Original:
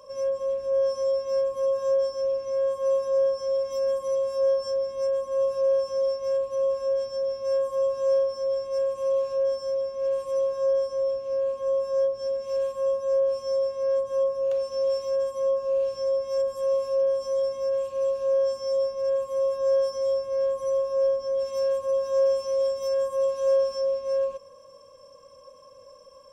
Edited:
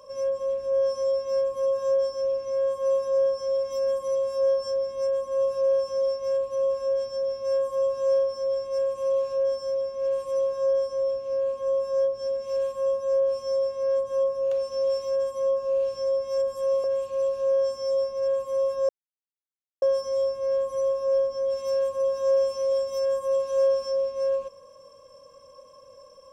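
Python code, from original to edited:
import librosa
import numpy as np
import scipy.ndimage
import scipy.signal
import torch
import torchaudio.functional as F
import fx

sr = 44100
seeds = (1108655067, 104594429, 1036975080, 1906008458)

y = fx.edit(x, sr, fx.cut(start_s=16.84, length_s=0.82),
    fx.insert_silence(at_s=19.71, length_s=0.93), tone=tone)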